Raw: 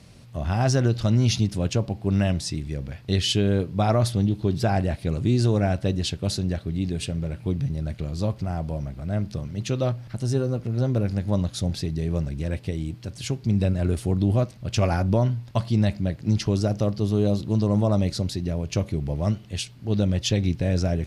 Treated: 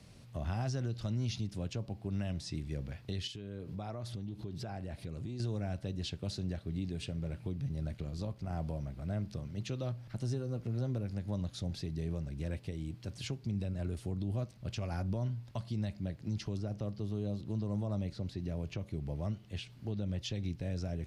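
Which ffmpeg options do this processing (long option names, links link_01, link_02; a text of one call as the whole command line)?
ffmpeg -i in.wav -filter_complex "[0:a]asettb=1/sr,asplit=3[link_01][link_02][link_03];[link_01]atrim=end=3.274[link_04];[link_02]atrim=start=3.27:end=5.4,asetpts=PTS-STARTPTS,afade=type=in:duration=0.004:curve=qsin,afade=type=out:start_time=2.126:duration=0.004:curve=qsin,acompressor=threshold=-30dB:ratio=8:attack=3.2:release=140:knee=1:detection=peak[link_05];[link_03]atrim=start=5.396[link_06];[link_04][link_05]acrossfade=duration=0.004:curve1=hsin:curve2=qsin[link_07];[link_07][link_06]acrossfade=duration=0.004:curve1=qsin:curve2=hsin,asplit=3[link_08][link_09][link_10];[link_08]afade=type=out:start_time=7.86:duration=0.02[link_11];[link_09]tremolo=f=61:d=0.4,afade=type=in:start_time=7.86:duration=0.02,afade=type=out:start_time=8.51:duration=0.02[link_12];[link_10]afade=type=in:start_time=8.51:duration=0.02[link_13];[link_11][link_12][link_13]amix=inputs=3:normalize=0,asettb=1/sr,asplit=3[link_14][link_15][link_16];[link_14]atrim=end=16.574[link_17];[link_15]atrim=start=16.57:end=20.19,asetpts=PTS-STARTPTS,afade=type=in:duration=0.004:curve=qsin,afade=type=out:start_time=3.616:duration=0.004:curve=qsin,acrossover=split=3500[link_18][link_19];[link_19]acompressor=threshold=-50dB:ratio=4:attack=1:release=60[link_20];[link_18][link_20]amix=inputs=2:normalize=0[link_21];[link_16]atrim=start=20.186[link_22];[link_17][link_21]acrossfade=duration=0.004:curve1=hsin:curve2=qsin[link_23];[link_23][link_22]acrossfade=duration=0.004:curve1=qsin:curve2=hsin,acrossover=split=230|3000[link_24][link_25][link_26];[link_25]acompressor=threshold=-29dB:ratio=2[link_27];[link_24][link_27][link_26]amix=inputs=3:normalize=0,alimiter=limit=-20dB:level=0:latency=1:release=471,acrossover=split=5900[link_28][link_29];[link_29]acompressor=threshold=-48dB:ratio=4:attack=1:release=60[link_30];[link_28][link_30]amix=inputs=2:normalize=0,volume=-7dB" out.wav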